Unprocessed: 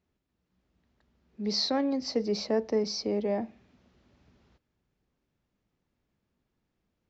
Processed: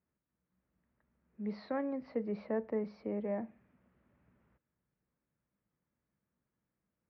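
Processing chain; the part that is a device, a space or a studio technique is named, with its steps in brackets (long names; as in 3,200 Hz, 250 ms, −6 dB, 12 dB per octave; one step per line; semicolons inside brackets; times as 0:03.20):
bass cabinet (loudspeaker in its box 70–2,100 Hz, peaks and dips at 91 Hz −7 dB, 270 Hz −4 dB, 390 Hz −6 dB, 760 Hz −5 dB)
level −4.5 dB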